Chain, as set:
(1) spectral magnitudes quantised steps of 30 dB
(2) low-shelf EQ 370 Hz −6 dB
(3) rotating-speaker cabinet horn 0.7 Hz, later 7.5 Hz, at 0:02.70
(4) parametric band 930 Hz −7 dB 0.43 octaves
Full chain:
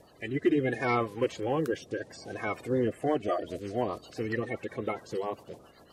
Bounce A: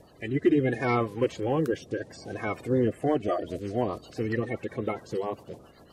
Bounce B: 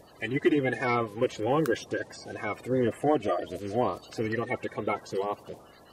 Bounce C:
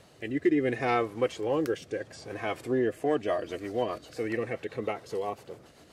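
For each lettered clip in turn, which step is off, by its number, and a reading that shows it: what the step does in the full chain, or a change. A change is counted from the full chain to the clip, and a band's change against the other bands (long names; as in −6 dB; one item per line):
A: 2, 125 Hz band +4.5 dB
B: 3, 125 Hz band −1.5 dB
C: 1, 125 Hz band −4.0 dB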